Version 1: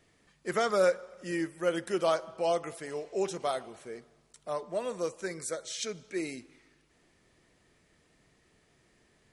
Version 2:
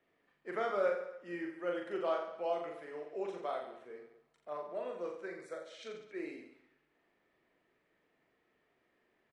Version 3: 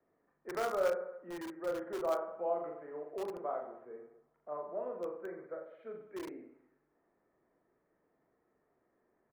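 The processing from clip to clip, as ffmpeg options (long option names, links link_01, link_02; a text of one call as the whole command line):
ffmpeg -i in.wav -filter_complex "[0:a]acrossover=split=240 3100:gain=0.178 1 0.0794[link_01][link_02][link_03];[link_01][link_02][link_03]amix=inputs=3:normalize=0,aecho=1:1:40|86|138.9|199.7|269.7:0.631|0.398|0.251|0.158|0.1,volume=-8dB" out.wav
ffmpeg -i in.wav -filter_complex "[0:a]acrossover=split=290|880|1500[link_01][link_02][link_03][link_04];[link_01]aeval=exprs='(mod(211*val(0)+1,2)-1)/211':channel_layout=same[link_05];[link_04]acrusher=bits=6:mix=0:aa=0.000001[link_06];[link_05][link_02][link_03][link_06]amix=inputs=4:normalize=0,volume=1dB" out.wav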